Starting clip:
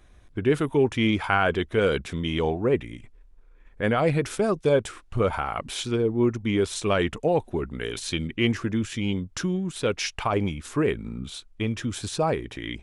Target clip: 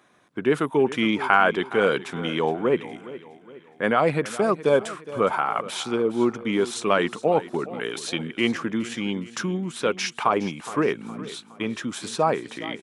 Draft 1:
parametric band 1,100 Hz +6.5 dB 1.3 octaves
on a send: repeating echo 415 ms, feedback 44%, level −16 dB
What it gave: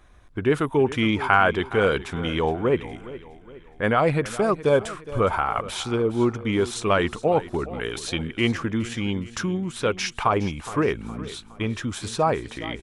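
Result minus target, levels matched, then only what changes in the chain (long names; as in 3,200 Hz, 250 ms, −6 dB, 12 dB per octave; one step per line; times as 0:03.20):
125 Hz band +6.0 dB
add first: high-pass filter 160 Hz 24 dB per octave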